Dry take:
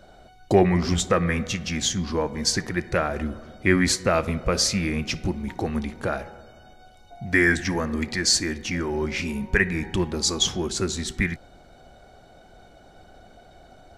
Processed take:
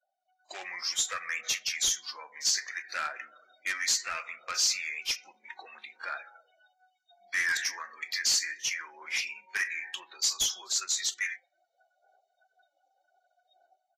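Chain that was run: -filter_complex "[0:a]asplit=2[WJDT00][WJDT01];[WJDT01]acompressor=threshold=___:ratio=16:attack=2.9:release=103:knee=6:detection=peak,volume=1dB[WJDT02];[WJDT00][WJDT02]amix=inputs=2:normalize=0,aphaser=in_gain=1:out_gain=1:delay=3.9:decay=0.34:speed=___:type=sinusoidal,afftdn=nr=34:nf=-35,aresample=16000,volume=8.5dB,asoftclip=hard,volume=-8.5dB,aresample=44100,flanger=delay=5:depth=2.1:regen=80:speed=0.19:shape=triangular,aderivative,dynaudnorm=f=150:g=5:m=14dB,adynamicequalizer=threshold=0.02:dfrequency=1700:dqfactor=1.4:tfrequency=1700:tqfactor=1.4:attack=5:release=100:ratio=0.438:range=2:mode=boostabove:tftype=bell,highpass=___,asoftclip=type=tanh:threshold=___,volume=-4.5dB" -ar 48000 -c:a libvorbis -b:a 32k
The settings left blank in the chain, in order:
-30dB, 0.66, 950, -18.5dB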